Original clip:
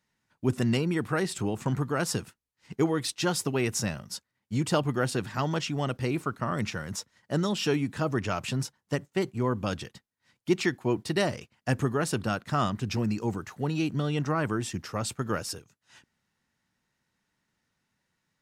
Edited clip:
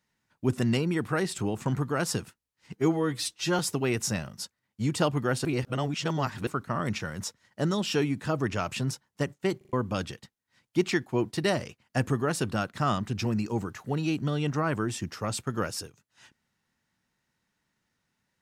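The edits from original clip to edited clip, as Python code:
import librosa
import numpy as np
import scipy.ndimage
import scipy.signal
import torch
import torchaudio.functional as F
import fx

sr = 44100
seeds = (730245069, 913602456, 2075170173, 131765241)

y = fx.edit(x, sr, fx.stretch_span(start_s=2.75, length_s=0.56, factor=1.5),
    fx.reverse_span(start_s=5.17, length_s=1.02),
    fx.stutter_over(start_s=9.29, slice_s=0.04, count=4), tone=tone)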